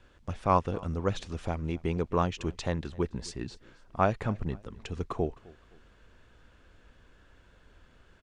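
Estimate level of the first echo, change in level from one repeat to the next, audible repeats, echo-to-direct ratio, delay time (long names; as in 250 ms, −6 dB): −23.0 dB, −8.5 dB, 2, −22.5 dB, 259 ms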